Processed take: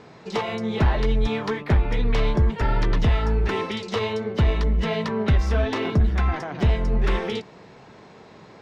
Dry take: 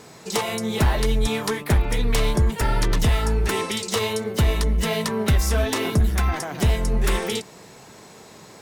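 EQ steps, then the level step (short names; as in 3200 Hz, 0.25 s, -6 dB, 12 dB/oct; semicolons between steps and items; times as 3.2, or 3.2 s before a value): air absorption 220 m; 0.0 dB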